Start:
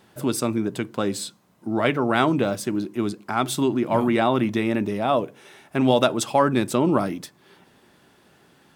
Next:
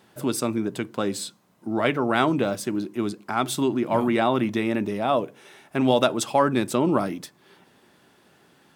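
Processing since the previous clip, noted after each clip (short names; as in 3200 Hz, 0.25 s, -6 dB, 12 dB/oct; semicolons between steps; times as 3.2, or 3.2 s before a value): low shelf 62 Hz -10.5 dB; gain -1 dB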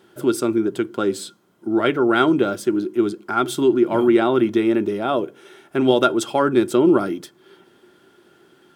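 small resonant body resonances 360/1400/3200 Hz, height 13 dB, ringing for 40 ms; gain -1 dB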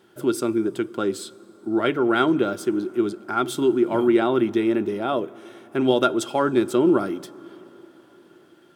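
plate-style reverb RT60 4.8 s, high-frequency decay 0.55×, DRR 20 dB; gain -3 dB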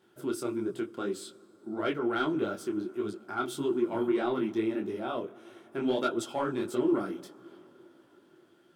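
soft clip -9 dBFS, distortion -23 dB; detuned doubles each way 56 cents; gain -5 dB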